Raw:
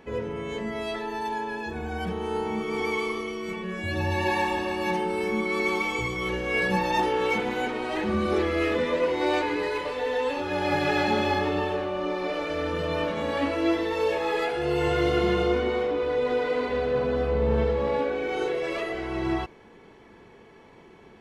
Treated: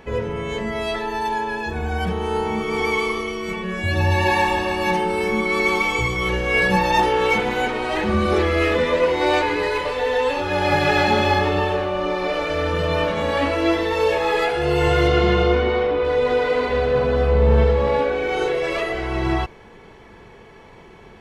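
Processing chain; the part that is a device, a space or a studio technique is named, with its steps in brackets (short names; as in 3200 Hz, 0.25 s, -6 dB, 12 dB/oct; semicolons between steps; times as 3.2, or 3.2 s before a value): low shelf boost with a cut just above (low shelf 75 Hz +7.5 dB; bell 280 Hz -5.5 dB 0.95 oct); 15.07–16.03 LPF 6700 Hz -> 3900 Hz 12 dB/oct; gain +7.5 dB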